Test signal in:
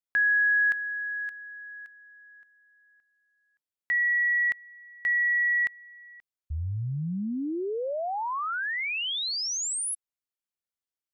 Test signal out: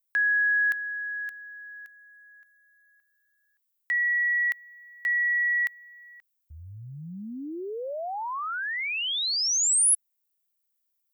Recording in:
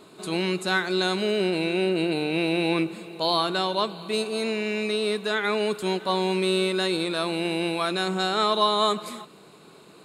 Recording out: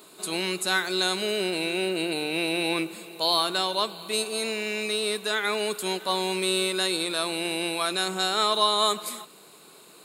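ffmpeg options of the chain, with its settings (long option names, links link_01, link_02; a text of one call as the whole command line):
ffmpeg -i in.wav -af "aemphasis=mode=production:type=bsi,volume=-1.5dB" out.wav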